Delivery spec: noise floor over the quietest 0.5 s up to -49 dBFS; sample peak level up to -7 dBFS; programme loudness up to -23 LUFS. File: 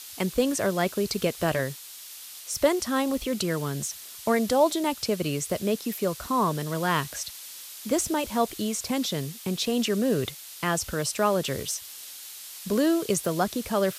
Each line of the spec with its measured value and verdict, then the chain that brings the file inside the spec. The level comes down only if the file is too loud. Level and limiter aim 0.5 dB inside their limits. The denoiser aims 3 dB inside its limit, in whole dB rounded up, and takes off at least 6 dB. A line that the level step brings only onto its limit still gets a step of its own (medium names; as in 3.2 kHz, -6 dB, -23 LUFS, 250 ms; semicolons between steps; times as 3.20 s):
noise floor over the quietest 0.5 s -43 dBFS: fail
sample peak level -9.5 dBFS: pass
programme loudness -27.0 LUFS: pass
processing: noise reduction 9 dB, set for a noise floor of -43 dBFS